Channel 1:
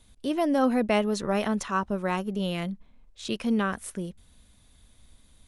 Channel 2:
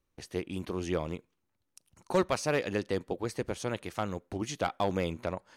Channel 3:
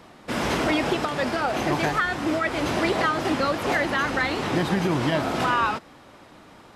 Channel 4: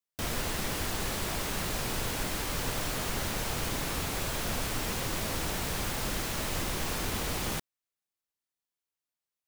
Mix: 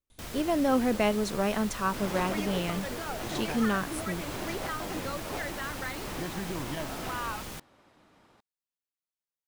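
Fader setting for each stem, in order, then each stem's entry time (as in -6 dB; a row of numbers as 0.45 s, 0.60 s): -2.0 dB, -12.5 dB, -13.0 dB, -8.0 dB; 0.10 s, 0.00 s, 1.65 s, 0.00 s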